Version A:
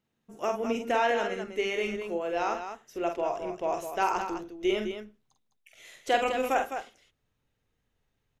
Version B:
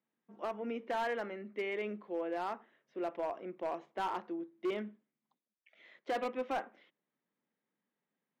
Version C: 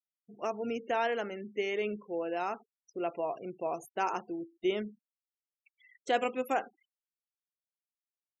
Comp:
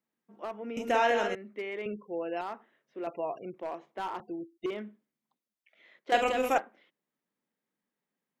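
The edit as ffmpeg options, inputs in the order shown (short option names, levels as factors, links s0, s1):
-filter_complex "[0:a]asplit=2[s0][s1];[2:a]asplit=3[s2][s3][s4];[1:a]asplit=6[s5][s6][s7][s8][s9][s10];[s5]atrim=end=0.772[s11];[s0]atrim=start=0.768:end=1.352[s12];[s6]atrim=start=1.348:end=1.862[s13];[s2]atrim=start=1.858:end=2.412[s14];[s7]atrim=start=2.408:end=3.072[s15];[s3]atrim=start=3.068:end=3.542[s16];[s8]atrim=start=3.538:end=4.202[s17];[s4]atrim=start=4.198:end=4.662[s18];[s9]atrim=start=4.658:end=6.122[s19];[s1]atrim=start=6.118:end=6.582[s20];[s10]atrim=start=6.578[s21];[s11][s12]acrossfade=d=0.004:c1=hsin:c2=hsin[s22];[s22][s13]acrossfade=d=0.004:c1=hsin:c2=hsin[s23];[s23][s14]acrossfade=d=0.004:c1=hsin:c2=hsin[s24];[s24][s15]acrossfade=d=0.004:c1=hsin:c2=hsin[s25];[s25][s16]acrossfade=d=0.004:c1=hsin:c2=hsin[s26];[s26][s17]acrossfade=d=0.004:c1=hsin:c2=hsin[s27];[s27][s18]acrossfade=d=0.004:c1=hsin:c2=hsin[s28];[s28][s19]acrossfade=d=0.004:c1=hsin:c2=hsin[s29];[s29][s20]acrossfade=d=0.004:c1=hsin:c2=hsin[s30];[s30][s21]acrossfade=d=0.004:c1=hsin:c2=hsin"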